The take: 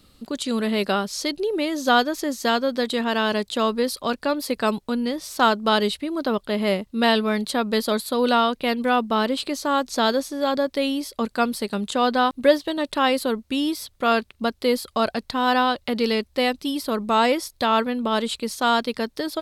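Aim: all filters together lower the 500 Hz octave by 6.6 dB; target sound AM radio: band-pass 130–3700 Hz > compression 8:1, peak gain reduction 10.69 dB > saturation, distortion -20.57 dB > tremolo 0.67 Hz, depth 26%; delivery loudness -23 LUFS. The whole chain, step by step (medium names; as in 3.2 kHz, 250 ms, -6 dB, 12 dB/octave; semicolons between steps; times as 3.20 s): band-pass 130–3700 Hz; peaking EQ 500 Hz -8 dB; compression 8:1, threshold -25 dBFS; saturation -21 dBFS; tremolo 0.67 Hz, depth 26%; trim +9.5 dB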